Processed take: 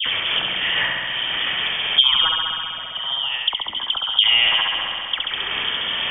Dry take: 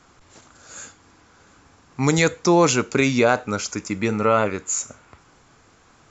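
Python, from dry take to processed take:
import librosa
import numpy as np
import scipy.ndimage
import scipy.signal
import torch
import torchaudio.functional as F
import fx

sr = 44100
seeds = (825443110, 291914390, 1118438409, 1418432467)

p1 = scipy.signal.sosfilt(scipy.signal.butter(2, 110.0, 'highpass', fs=sr, output='sos'), x)
p2 = fx.notch(p1, sr, hz=1300.0, q=7.7)
p3 = fx.over_compress(p2, sr, threshold_db=-24.0, ratio=-0.5)
p4 = p2 + F.gain(torch.from_numpy(p3), 0.0).numpy()
p5 = fx.transient(p4, sr, attack_db=7, sustain_db=-12)
p6 = fx.rotary_switch(p5, sr, hz=6.0, then_hz=1.1, switch_at_s=1.5)
p7 = fx.gate_flip(p6, sr, shuts_db=-13.0, range_db=-35, at=(2.24, 4.19))
p8 = fx.dispersion(p7, sr, late='highs', ms=67.0, hz=1300.0)
p9 = p8 + fx.room_flutter(p8, sr, wall_m=11.5, rt60_s=1.1, dry=0)
p10 = fx.freq_invert(p9, sr, carrier_hz=3400)
p11 = fx.band_squash(p10, sr, depth_pct=100)
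y = F.gain(torch.from_numpy(p11), 7.0).numpy()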